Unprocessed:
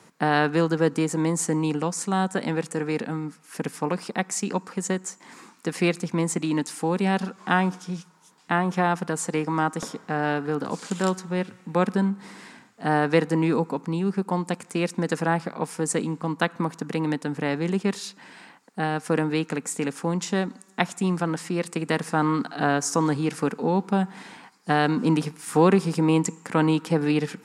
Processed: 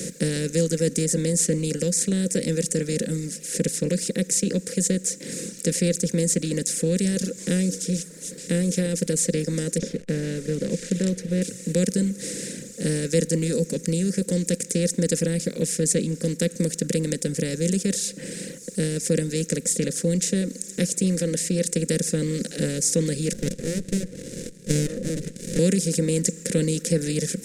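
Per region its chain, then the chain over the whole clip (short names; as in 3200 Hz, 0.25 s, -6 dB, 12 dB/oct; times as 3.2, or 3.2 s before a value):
9.78–11.42 level-crossing sampler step -42 dBFS + LPF 2100 Hz
23.33–25.59 low shelf 380 Hz -11 dB + LFO low-pass sine 1 Hz 710–2700 Hz + running maximum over 65 samples
whole clip: per-bin compression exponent 0.4; reverb removal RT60 0.98 s; EQ curve 110 Hz 0 dB, 180 Hz +7 dB, 370 Hz -3 dB, 520 Hz +5 dB, 760 Hz -29 dB, 1100 Hz -29 dB, 1800 Hz -5 dB, 2700 Hz -5 dB, 4900 Hz +8 dB, 12000 Hz +11 dB; gain -6.5 dB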